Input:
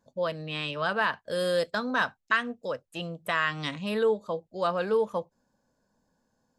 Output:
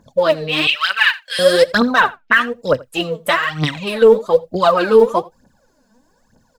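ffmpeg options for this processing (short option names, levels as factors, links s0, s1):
-filter_complex "[0:a]asettb=1/sr,asplit=3[s0][s1][s2];[s0]atrim=end=2.004[s3];[s1]atrim=start=2:end=2.41,asetpts=PTS-STARTPTS,afade=t=in:d=0.004:c=qsin,afade=t=out:st=0.406:d=0.004:c=qsin,lowpass=f=3100:w=0.5412,lowpass=f=3100:w=1.3066[s4];[s2]atrim=start=2.406[s5];[s3][s4]acrossfade=d=0.004:c1=hsin:c2=qsin[s6];[s6][s5]acrossfade=d=0.004:c1=qsin:c2=hsin,asettb=1/sr,asplit=3[s7][s8][s9];[s7]atrim=end=3.334[s10];[s8]atrim=start=3.33:end=4.02,asetpts=PTS-STARTPTS,afade=t=in:d=0.004:c=qsin,afade=t=out:st=0.686:d=0.004:c=qsin,acompressor=threshold=0.02:ratio=2.5[s11];[s9]atrim=start=4.016[s12];[s10][s11]acrossfade=d=0.004:c1=hsin:c2=qsin[s13];[s13][s12]acrossfade=d=0.004:c1=qsin:c2=hsin,aphaser=in_gain=1:out_gain=1:delay=4.7:decay=0.76:speed=1.1:type=triangular,asettb=1/sr,asplit=3[s14][s15][s16];[s14]atrim=end=0.674[s17];[s15]atrim=start=0.67:end=1.39,asetpts=PTS-STARTPTS,afade=t=in:d=0.004:c=qsin,afade=t=out:st=0.716:d=0.004:c=qsin,highpass=f=2300:t=q:w=2.6[s18];[s16]atrim=start=1.386[s19];[s17][s18]acrossfade=d=0.004:c1=hsin:c2=qsin[s20];[s20][s19]acrossfade=d=0.004:c1=qsin:c2=hsin,aecho=1:1:84:0.0668,alimiter=level_in=4.47:limit=0.891:release=50:level=0:latency=1,volume=0.891"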